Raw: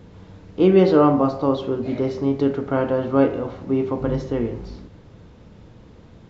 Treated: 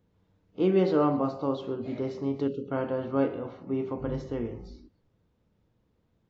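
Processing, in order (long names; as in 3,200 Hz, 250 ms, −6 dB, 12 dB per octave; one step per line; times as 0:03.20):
delay with a high-pass on its return 128 ms, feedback 62%, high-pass 2,200 Hz, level −19 dB
gain on a spectral selection 0:02.48–0:02.71, 570–2,500 Hz −17 dB
noise reduction from a noise print of the clip's start 16 dB
level −9 dB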